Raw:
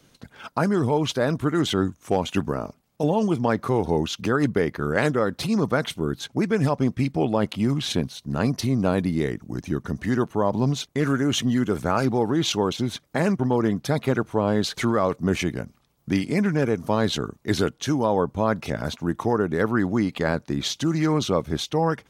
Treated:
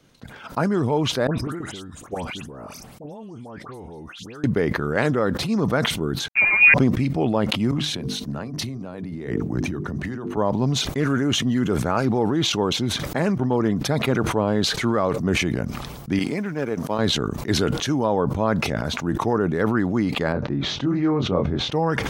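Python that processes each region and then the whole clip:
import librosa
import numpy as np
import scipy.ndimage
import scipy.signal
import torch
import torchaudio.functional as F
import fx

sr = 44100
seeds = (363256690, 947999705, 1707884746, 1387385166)

y = fx.chain(x, sr, fx.peak_eq(hz=9400.0, db=7.0, octaves=0.61),
    fx.level_steps(step_db=19),
    fx.dispersion(late='highs', ms=112.0, hz=2100.0), at=(1.27, 4.44))
y = fx.chain(y, sr, fx.peak_eq(hz=140.0, db=11.5, octaves=0.73),
    fx.sample_gate(floor_db=-27.0),
    fx.freq_invert(carrier_hz=2600), at=(6.28, 6.74))
y = fx.chain(y, sr, fx.hum_notches(base_hz=50, count=9),
    fx.over_compress(threshold_db=-30.0, ratio=-1.0),
    fx.band_widen(depth_pct=40), at=(7.71, 10.37))
y = fx.chain(y, sr, fx.law_mismatch(coded='A'),
    fx.highpass(hz=210.0, slope=6),
    fx.upward_expand(threshold_db=-35.0, expansion=2.5), at=(16.19, 16.99))
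y = fx.chain(y, sr, fx.spacing_loss(db_at_10k=32),
    fx.doubler(ms=22.0, db=-5), at=(20.32, 21.72))
y = fx.high_shelf(y, sr, hz=5200.0, db=-6.0)
y = fx.sustainer(y, sr, db_per_s=31.0)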